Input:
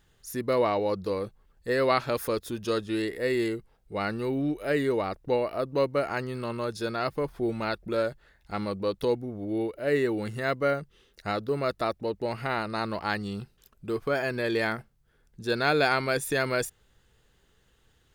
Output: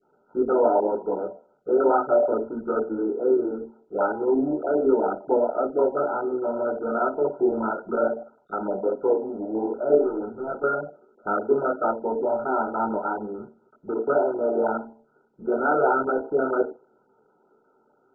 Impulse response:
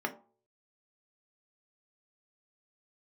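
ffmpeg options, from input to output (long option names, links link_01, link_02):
-filter_complex "[0:a]acrossover=split=710|3200[link_01][link_02][link_03];[link_03]aeval=exprs='0.0158*(abs(mod(val(0)/0.0158+3,4)-2)-1)':channel_layout=same[link_04];[link_01][link_02][link_04]amix=inputs=3:normalize=0,flanger=delay=17.5:depth=4.8:speed=2.1,asplit=2[link_05][link_06];[link_06]acompressor=threshold=-39dB:ratio=8,volume=-2dB[link_07];[link_05][link_07]amix=inputs=2:normalize=0,adynamicequalizer=threshold=0.00562:dfrequency=1900:dqfactor=0.92:tfrequency=1900:tqfactor=0.92:attack=5:release=100:ratio=0.375:range=1.5:mode=cutabove:tftype=bell,highpass=310,lowpass=4100,bandreject=frequency=1100:width=20,asettb=1/sr,asplit=3[link_08][link_09][link_10];[link_08]atrim=end=10.004[link_11];[link_09]atrim=start=10:end=10.64,asetpts=PTS-STARTPTS,afade=type=in:duration=0.004:curve=qsin,afade=type=out:start_time=0.636:duration=0.004:curve=qsin,aeval=exprs='(tanh(44.7*val(0)+0.35)-tanh(0.35))/44.7':channel_layout=same[link_12];[link_10]atrim=start=10.636[link_13];[link_11][link_12]acrossfade=duration=0.004:curve1=hsin:curve2=qsin[link_14];[link_14][link_13]acrossfade=duration=0.004:curve1=qsin:curve2=hsin[link_15];[1:a]atrim=start_sample=2205[link_16];[link_15][link_16]afir=irnorm=-1:irlink=0,volume=1dB" -ar 16000 -c:a mp2 -b:a 8k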